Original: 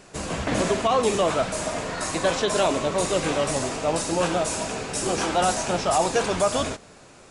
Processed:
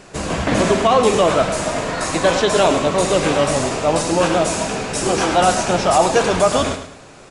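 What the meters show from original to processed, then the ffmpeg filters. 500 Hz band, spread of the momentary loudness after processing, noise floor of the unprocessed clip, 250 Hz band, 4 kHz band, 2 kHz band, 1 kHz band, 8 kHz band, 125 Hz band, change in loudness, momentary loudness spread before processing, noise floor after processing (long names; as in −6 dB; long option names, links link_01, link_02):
+7.5 dB, 7 LU, −49 dBFS, +7.5 dB, +6.0 dB, +7.0 dB, +7.5 dB, +4.5 dB, +7.5 dB, +7.0 dB, 7 LU, −42 dBFS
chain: -af "highshelf=frequency=6400:gain=-5,aecho=1:1:105|210|315|420:0.316|0.111|0.0387|0.0136,volume=7dB"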